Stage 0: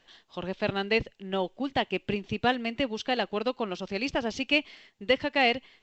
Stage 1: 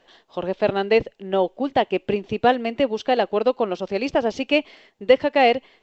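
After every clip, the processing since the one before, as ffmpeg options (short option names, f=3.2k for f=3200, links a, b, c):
-af "equalizer=f=540:t=o:w=2.2:g=11"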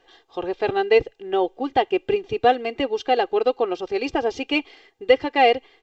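-af "aecho=1:1:2.5:0.77,volume=-2.5dB"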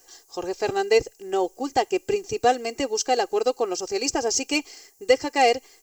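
-af "aexciter=amount=13.5:drive=9.9:freq=5.6k,volume=-2.5dB"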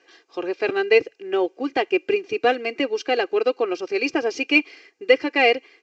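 -af "highpass=240,equalizer=f=310:t=q:w=4:g=5,equalizer=f=810:t=q:w=4:g=-8,equalizer=f=1.5k:t=q:w=4:g=4,equalizer=f=2.4k:t=q:w=4:g=9,lowpass=f=3.7k:w=0.5412,lowpass=f=3.7k:w=1.3066,volume=2.5dB"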